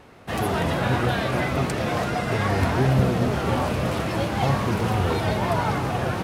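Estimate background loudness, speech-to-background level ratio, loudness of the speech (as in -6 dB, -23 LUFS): -25.0 LUFS, -3.5 dB, -28.5 LUFS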